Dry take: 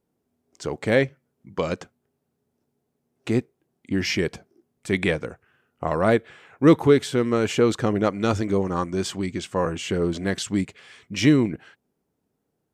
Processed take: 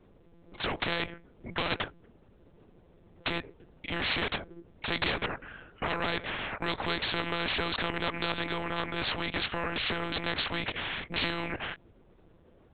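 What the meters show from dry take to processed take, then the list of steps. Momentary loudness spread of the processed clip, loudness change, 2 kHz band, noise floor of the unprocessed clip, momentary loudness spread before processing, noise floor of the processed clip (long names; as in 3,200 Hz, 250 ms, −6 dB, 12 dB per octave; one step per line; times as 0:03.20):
8 LU, −9.0 dB, −1.0 dB, −77 dBFS, 14 LU, −60 dBFS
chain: downward compressor, threshold −19 dBFS, peak gain reduction 9.5 dB
one-pitch LPC vocoder at 8 kHz 170 Hz
every bin compressed towards the loudest bin 4 to 1
level −4.5 dB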